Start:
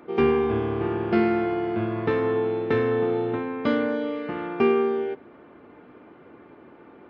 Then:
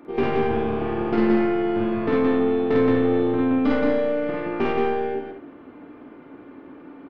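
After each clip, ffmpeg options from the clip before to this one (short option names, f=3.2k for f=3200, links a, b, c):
-af "equalizer=f=280:t=o:w=0.26:g=11.5,aeval=exprs='(tanh(5.62*val(0)+0.35)-tanh(0.35))/5.62':c=same,aecho=1:1:49.56|172|242:1|0.794|0.355,volume=-1dB"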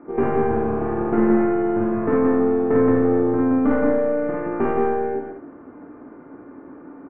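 -af "lowpass=f=1.7k:w=0.5412,lowpass=f=1.7k:w=1.3066,volume=2dB"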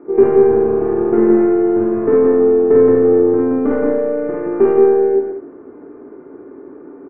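-af "equalizer=f=400:w=3:g=15,volume=-1.5dB"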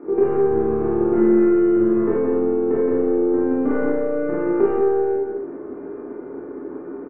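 -filter_complex "[0:a]acompressor=threshold=-25dB:ratio=2,asplit=2[a][b];[b]aecho=0:1:28|40|55:0.668|0.708|0.668[c];[a][c]amix=inputs=2:normalize=0"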